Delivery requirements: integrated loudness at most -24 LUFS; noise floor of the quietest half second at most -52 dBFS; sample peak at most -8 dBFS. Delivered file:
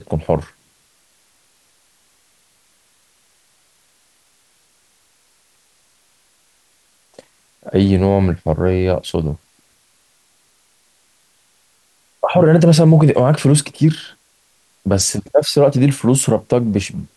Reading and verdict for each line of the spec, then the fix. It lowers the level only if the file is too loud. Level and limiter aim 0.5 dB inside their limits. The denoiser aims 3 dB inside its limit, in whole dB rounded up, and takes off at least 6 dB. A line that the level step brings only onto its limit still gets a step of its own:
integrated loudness -15.0 LUFS: fail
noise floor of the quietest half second -58 dBFS: pass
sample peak -2.0 dBFS: fail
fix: trim -9.5 dB

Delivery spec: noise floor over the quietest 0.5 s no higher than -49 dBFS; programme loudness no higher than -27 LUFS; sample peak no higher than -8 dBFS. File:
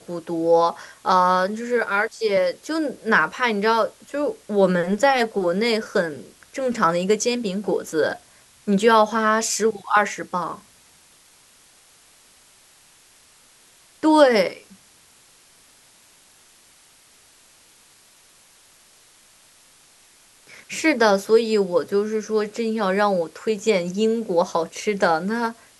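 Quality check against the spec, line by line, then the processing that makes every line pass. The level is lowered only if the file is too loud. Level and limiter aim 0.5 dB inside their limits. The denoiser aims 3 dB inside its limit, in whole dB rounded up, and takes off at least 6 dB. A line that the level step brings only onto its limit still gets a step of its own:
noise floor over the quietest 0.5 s -54 dBFS: pass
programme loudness -21.0 LUFS: fail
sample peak -3.0 dBFS: fail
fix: trim -6.5 dB

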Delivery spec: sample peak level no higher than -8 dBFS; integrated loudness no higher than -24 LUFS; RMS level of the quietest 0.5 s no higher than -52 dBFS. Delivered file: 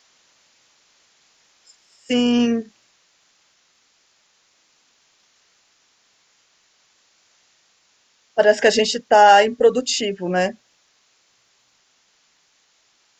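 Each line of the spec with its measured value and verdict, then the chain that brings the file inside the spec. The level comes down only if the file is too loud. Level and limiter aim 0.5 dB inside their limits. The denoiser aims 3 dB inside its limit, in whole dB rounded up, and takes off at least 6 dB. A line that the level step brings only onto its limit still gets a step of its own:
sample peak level -2.0 dBFS: fail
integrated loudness -17.0 LUFS: fail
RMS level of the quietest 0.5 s -62 dBFS: pass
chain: trim -7.5 dB

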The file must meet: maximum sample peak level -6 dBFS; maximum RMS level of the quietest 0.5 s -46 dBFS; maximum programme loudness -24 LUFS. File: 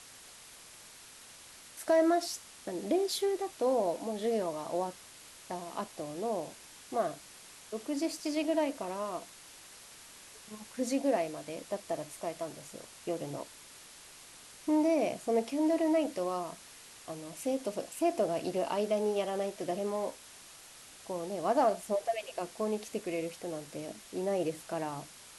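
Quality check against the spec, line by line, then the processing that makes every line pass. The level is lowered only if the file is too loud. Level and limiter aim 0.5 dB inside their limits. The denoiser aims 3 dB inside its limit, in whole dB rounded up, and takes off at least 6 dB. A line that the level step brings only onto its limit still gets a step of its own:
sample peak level -16.5 dBFS: pass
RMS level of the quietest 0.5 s -53 dBFS: pass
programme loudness -33.5 LUFS: pass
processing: none needed

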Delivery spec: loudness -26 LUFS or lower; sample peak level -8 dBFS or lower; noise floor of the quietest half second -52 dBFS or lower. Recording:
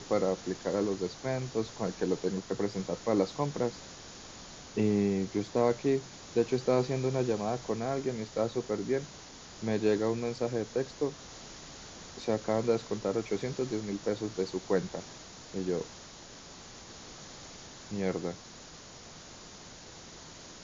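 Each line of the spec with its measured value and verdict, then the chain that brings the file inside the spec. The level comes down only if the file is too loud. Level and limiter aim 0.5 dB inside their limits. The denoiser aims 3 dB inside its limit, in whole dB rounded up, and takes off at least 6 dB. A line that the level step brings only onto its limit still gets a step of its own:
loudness -32.0 LUFS: pass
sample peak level -14.5 dBFS: pass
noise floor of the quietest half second -49 dBFS: fail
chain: noise reduction 6 dB, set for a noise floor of -49 dBFS

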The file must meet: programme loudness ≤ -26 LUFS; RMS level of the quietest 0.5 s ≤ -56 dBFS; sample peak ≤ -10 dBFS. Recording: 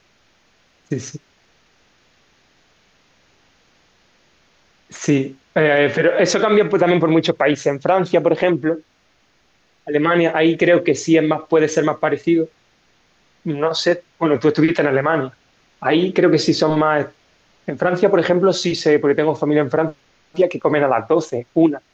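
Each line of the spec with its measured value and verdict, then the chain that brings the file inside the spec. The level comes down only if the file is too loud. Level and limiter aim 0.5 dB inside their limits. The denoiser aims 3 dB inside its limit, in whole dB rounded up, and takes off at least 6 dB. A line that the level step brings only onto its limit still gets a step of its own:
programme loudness -17.0 LUFS: fail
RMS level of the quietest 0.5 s -60 dBFS: pass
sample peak -4.5 dBFS: fail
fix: trim -9.5 dB

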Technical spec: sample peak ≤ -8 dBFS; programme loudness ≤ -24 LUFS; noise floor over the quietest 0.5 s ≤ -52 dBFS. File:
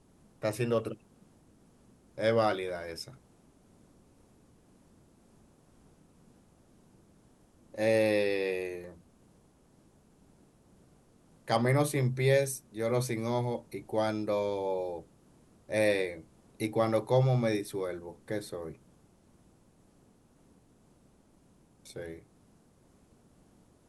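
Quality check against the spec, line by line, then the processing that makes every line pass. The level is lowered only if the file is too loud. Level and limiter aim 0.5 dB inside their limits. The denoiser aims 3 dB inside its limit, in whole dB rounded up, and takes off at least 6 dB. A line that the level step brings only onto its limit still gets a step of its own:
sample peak -13.5 dBFS: pass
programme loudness -31.0 LUFS: pass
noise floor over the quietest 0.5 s -63 dBFS: pass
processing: none needed

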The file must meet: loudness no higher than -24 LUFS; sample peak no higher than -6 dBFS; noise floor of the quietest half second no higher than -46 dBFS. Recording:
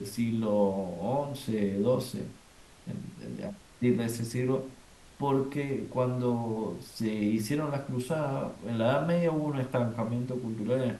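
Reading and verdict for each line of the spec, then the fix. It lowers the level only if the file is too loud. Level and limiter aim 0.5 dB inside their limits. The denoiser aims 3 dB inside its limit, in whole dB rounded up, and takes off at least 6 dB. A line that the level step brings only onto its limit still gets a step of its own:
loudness -31.0 LUFS: pass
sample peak -15.0 dBFS: pass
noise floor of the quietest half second -55 dBFS: pass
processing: none needed

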